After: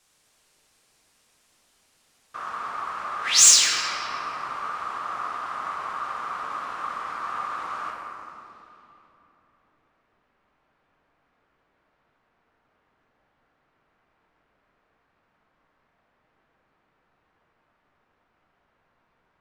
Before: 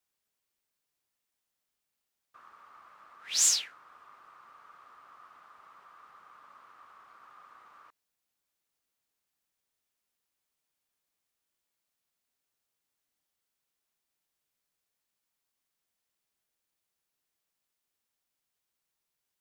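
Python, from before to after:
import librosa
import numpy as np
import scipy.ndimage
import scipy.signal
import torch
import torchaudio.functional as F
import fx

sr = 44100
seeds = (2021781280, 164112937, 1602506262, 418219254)

p1 = fx.over_compress(x, sr, threshold_db=-46.0, ratio=-1.0)
p2 = x + (p1 * librosa.db_to_amplitude(-2.0))
p3 = fx.filter_sweep_lowpass(p2, sr, from_hz=9000.0, to_hz=1500.0, start_s=7.96, end_s=9.22, q=1.1)
p4 = fx.fold_sine(p3, sr, drive_db=4, ceiling_db=-9.5)
p5 = fx.room_shoebox(p4, sr, seeds[0], volume_m3=150.0, walls='hard', distance_m=0.56)
y = p5 * librosa.db_to_amplitude(1.0)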